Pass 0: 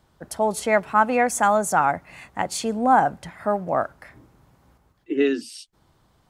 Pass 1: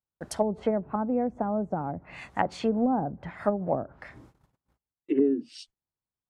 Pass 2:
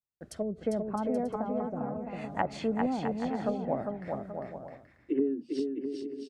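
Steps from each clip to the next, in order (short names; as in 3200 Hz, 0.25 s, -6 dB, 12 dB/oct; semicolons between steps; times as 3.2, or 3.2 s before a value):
treble ducked by the level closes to 360 Hz, closed at -18.5 dBFS; gate -53 dBFS, range -37 dB
rotary speaker horn 0.7 Hz, later 7.5 Hz, at 3.62; on a send: bouncing-ball echo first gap 0.4 s, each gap 0.65×, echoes 5; on the sum: gain -3.5 dB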